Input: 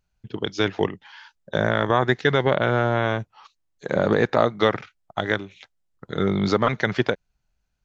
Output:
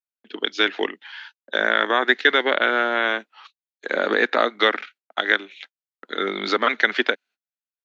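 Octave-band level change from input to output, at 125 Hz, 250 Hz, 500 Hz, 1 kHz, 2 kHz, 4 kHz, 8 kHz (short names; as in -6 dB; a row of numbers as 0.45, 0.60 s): under -25 dB, -5.0 dB, -2.0 dB, +1.5 dB, +7.0 dB, +7.5 dB, n/a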